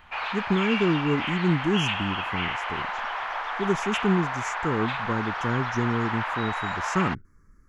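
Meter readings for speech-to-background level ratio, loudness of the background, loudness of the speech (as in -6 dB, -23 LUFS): 1.5 dB, -29.5 LUFS, -28.0 LUFS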